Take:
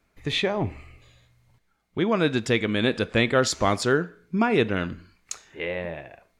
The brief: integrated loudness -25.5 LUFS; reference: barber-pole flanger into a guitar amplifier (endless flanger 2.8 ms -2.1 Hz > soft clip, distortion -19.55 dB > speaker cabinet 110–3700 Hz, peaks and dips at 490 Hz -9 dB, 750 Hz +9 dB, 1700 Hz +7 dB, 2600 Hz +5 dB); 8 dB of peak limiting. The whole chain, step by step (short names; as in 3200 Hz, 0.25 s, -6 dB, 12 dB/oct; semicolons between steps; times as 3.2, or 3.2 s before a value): limiter -16.5 dBFS; endless flanger 2.8 ms -2.1 Hz; soft clip -21.5 dBFS; speaker cabinet 110–3700 Hz, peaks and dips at 490 Hz -9 dB, 750 Hz +9 dB, 1700 Hz +7 dB, 2600 Hz +5 dB; gain +6.5 dB